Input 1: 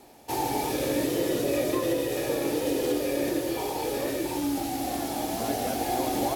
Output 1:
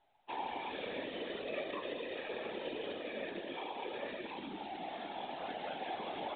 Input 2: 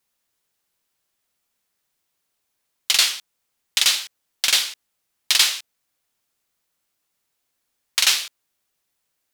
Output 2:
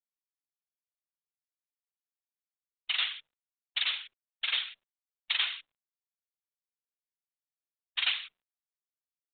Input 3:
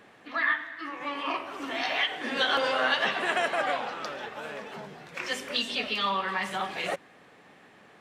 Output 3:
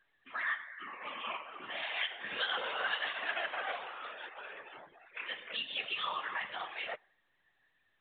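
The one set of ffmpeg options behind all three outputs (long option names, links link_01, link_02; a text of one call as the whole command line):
ffmpeg -i in.wav -filter_complex "[0:a]highpass=frequency=1400:poles=1,afftdn=noise_reduction=27:noise_floor=-48,asplit=2[link_01][link_02];[link_02]acompressor=threshold=-36dB:ratio=5,volume=-2dB[link_03];[link_01][link_03]amix=inputs=2:normalize=0,afftfilt=real='hypot(re,im)*cos(2*PI*random(0))':imag='hypot(re,im)*sin(2*PI*random(1))':win_size=512:overlap=0.75,volume=-2dB" -ar 8000 -c:a pcm_mulaw out.wav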